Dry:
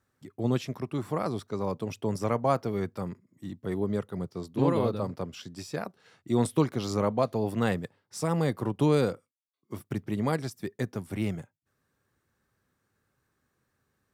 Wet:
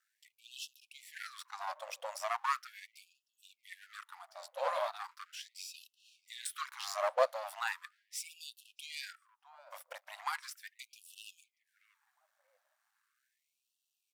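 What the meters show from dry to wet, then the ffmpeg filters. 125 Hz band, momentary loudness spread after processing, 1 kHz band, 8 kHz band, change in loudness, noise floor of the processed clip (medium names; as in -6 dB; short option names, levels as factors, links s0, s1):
under -40 dB, 18 LU, -4.5 dB, -1.5 dB, -10.0 dB, under -85 dBFS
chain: -filter_complex "[0:a]aeval=exprs='if(lt(val(0),0),0.251*val(0),val(0))':c=same,asplit=2[s0][s1];[s1]adelay=635,lowpass=f=1400:p=1,volume=0.0944,asplit=2[s2][s3];[s3]adelay=635,lowpass=f=1400:p=1,volume=0.38,asplit=2[s4][s5];[s5]adelay=635,lowpass=f=1400:p=1,volume=0.38[s6];[s2][s4][s6]amix=inputs=3:normalize=0[s7];[s0][s7]amix=inputs=2:normalize=0,afftfilt=real='re*gte(b*sr/1024,510*pow(2600/510,0.5+0.5*sin(2*PI*0.38*pts/sr)))':imag='im*gte(b*sr/1024,510*pow(2600/510,0.5+0.5*sin(2*PI*0.38*pts/sr)))':win_size=1024:overlap=0.75,volume=1.33"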